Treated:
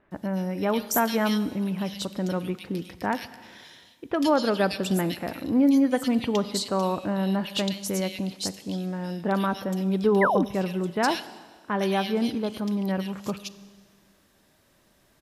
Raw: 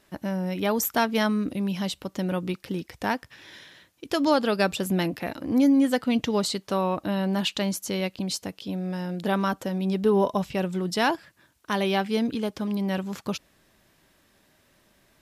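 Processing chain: bands offset in time lows, highs 110 ms, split 2.3 kHz; Schroeder reverb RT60 1.7 s, combs from 31 ms, DRR 15 dB; painted sound fall, 10.21–10.45 s, 210–2200 Hz -23 dBFS

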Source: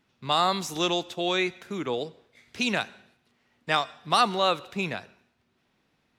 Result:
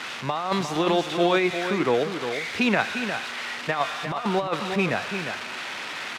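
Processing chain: zero-crossing glitches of -17.5 dBFS; low-pass 1.9 kHz 12 dB/octave; bass shelf 310 Hz -3 dB; compressor with a negative ratio -28 dBFS, ratio -0.5; on a send: delay 354 ms -8 dB; on the sum: trim +6.5 dB

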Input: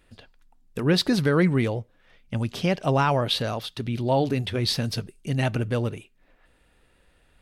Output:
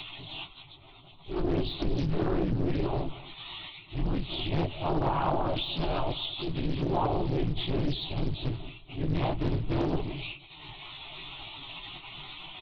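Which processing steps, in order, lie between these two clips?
zero-crossing glitches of -18.5 dBFS; in parallel at -1 dB: peak limiter -18.5 dBFS, peak gain reduction 7.5 dB; on the sum: LPC vocoder at 8 kHz whisper; bass shelf 490 Hz +3.5 dB; static phaser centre 330 Hz, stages 8; transient shaper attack -8 dB, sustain -1 dB; de-esser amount 80%; plain phase-vocoder stretch 1.7×; compression 10:1, threshold -23 dBFS, peak gain reduction 7.5 dB; delay 222 ms -19.5 dB; loudspeaker Doppler distortion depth 0.81 ms

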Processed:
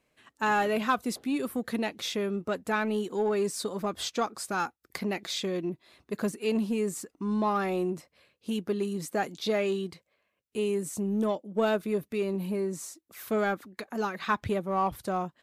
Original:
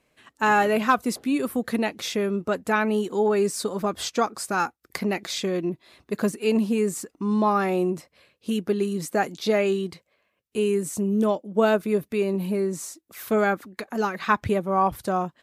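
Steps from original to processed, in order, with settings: dynamic bell 3.6 kHz, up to +4 dB, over -45 dBFS, Q 2.5; in parallel at -10 dB: hard clipper -22.5 dBFS, distortion -9 dB; on the sum: trim -7.5 dB

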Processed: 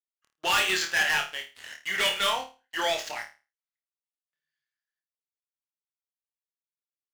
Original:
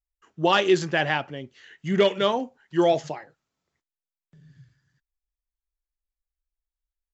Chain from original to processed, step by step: Butterworth band-pass 4.6 kHz, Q 0.51; treble shelf 5.4 kHz -12 dB; waveshaping leveller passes 5; flutter echo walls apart 4.6 m, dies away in 0.31 s; trim -6 dB

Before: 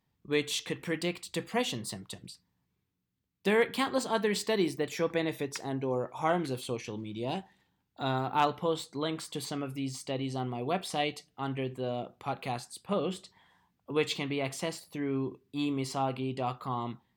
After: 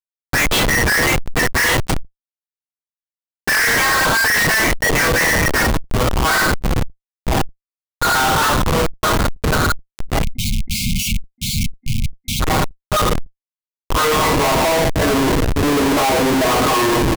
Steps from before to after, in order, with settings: comb 6.4 ms, depth 88%; in parallel at -2 dB: peak limiter -21 dBFS, peak gain reduction 11 dB; on the sum: resonant high shelf 2.3 kHz -11 dB, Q 1.5; feedback delay 373 ms, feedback 42%, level -19 dB; simulated room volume 63 m³, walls mixed, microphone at 2.8 m; high-pass sweep 1.8 kHz -> 340 Hz, 13.22–16.38 s; spectral noise reduction 24 dB; Schmitt trigger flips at -25.5 dBFS; waveshaping leveller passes 5; spectral selection erased 10.23–12.40 s, 250–2100 Hz; decay stretcher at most 130 dB/s

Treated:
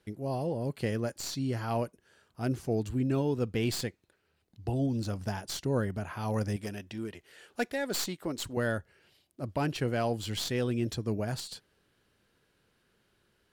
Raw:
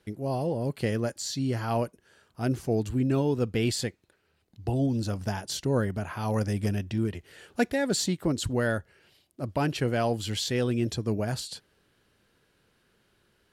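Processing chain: tracing distortion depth 0.047 ms; 6.56–8.57 s: peaking EQ 82 Hz -12 dB 3 oct; trim -3.5 dB

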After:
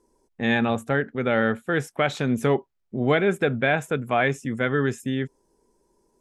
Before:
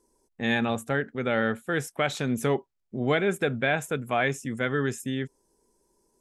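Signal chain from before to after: treble shelf 5.1 kHz -10 dB; trim +4 dB

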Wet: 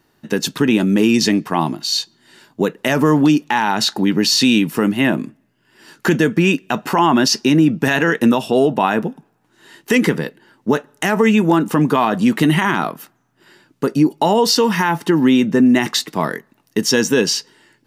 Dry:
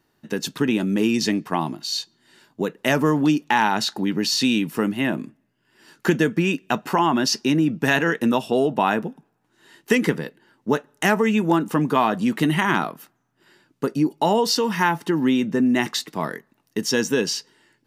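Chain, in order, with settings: peak limiter -11.5 dBFS, peak gain reduction 7 dB; trim +7 dB

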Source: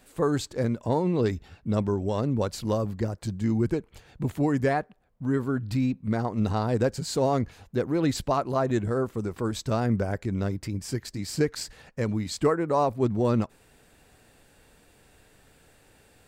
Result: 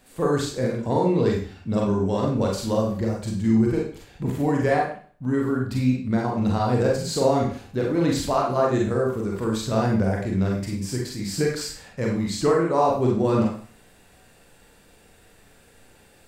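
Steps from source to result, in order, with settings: Schroeder reverb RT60 0.45 s, combs from 32 ms, DRR -2 dB

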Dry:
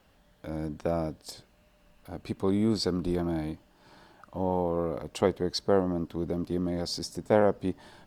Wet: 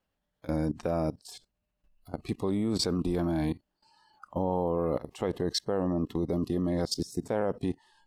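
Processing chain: dynamic bell 4.6 kHz, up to -5 dB, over -51 dBFS, Q 3.9; spectral noise reduction 20 dB; 1.24–2.12 s: bass shelf 160 Hz +8 dB; level held to a coarse grid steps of 18 dB; trim +8 dB

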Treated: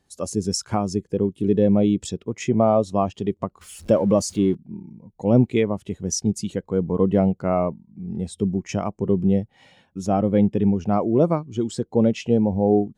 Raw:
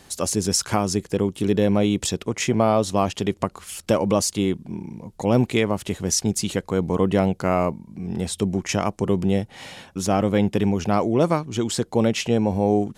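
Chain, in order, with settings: 3.61–4.55 s: jump at every zero crossing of -30 dBFS; spectral contrast expander 1.5:1

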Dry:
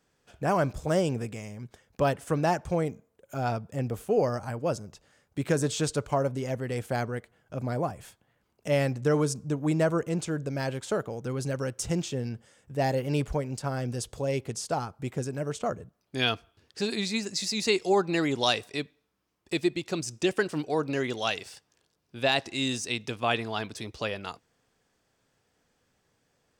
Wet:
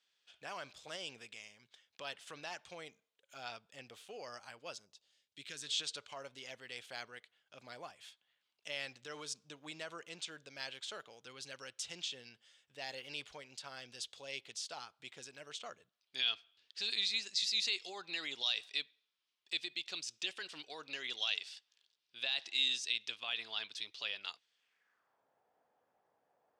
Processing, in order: 4.84–5.67 s: peaking EQ 2.5 kHz -> 600 Hz -12.5 dB 1.7 oct; peak limiter -19.5 dBFS, peak gain reduction 9.5 dB; band-pass sweep 3.5 kHz -> 760 Hz, 24.54–25.24 s; trim +3 dB

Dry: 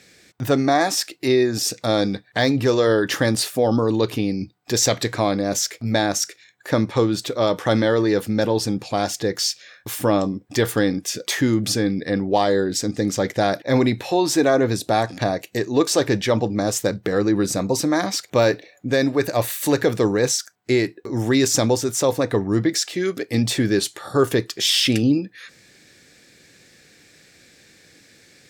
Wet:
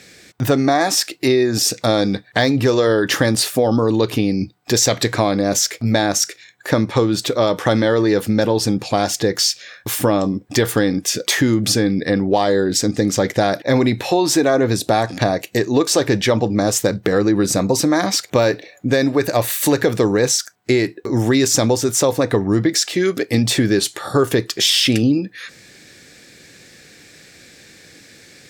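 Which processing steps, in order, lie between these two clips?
compression 3:1, threshold -20 dBFS, peak gain reduction 6.5 dB; trim +7 dB

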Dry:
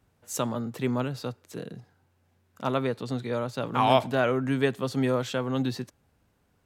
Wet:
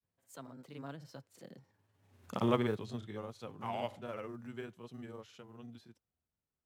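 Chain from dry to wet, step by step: block-companded coder 7-bit; Doppler pass-by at 2.26 s, 35 m/s, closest 3.2 m; granulator, spray 35 ms, pitch spread up and down by 0 st; trim +8 dB

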